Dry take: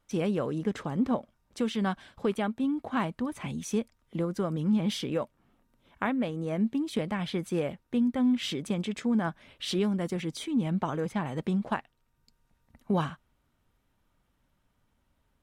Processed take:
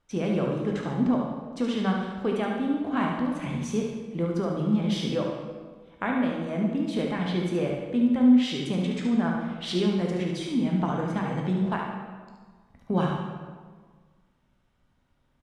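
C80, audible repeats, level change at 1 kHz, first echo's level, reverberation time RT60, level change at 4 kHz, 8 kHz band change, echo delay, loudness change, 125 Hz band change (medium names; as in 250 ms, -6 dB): 4.5 dB, 1, +3.0 dB, -6.0 dB, 1.6 s, +2.0 dB, no reading, 72 ms, +3.5 dB, +4.0 dB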